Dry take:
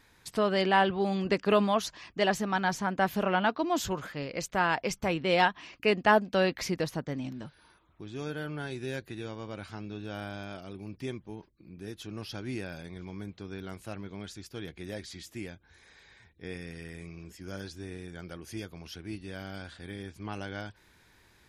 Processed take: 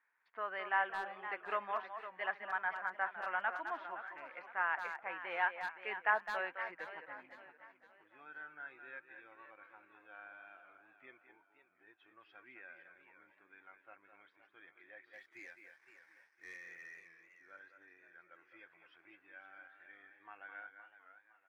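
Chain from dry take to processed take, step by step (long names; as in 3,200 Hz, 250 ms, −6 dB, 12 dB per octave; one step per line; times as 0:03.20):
0:18.41–0:19.30: converter with a step at zero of −48.5 dBFS
high-pass filter 1,300 Hz 12 dB per octave
noise reduction from a noise print of the clip's start 8 dB
inverse Chebyshev low-pass filter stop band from 7,700 Hz, stop band 70 dB
far-end echo of a speakerphone 210 ms, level −8 dB
0:15.13–0:17.00: leveller curve on the samples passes 2
feedback echo with a swinging delay time 514 ms, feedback 39%, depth 141 cents, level −12 dB
level −2.5 dB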